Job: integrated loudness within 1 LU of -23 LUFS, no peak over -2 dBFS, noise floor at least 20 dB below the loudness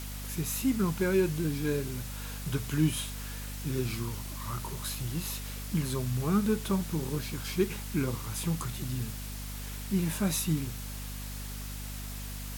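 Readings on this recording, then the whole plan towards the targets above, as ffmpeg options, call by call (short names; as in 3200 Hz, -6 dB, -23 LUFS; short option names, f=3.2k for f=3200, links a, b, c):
hum 50 Hz; harmonics up to 250 Hz; hum level -37 dBFS; noise floor -39 dBFS; noise floor target -53 dBFS; loudness -32.5 LUFS; peak -15.0 dBFS; loudness target -23.0 LUFS
-> -af "bandreject=f=50:t=h:w=6,bandreject=f=100:t=h:w=6,bandreject=f=150:t=h:w=6,bandreject=f=200:t=h:w=6,bandreject=f=250:t=h:w=6"
-af "afftdn=nr=14:nf=-39"
-af "volume=9.5dB"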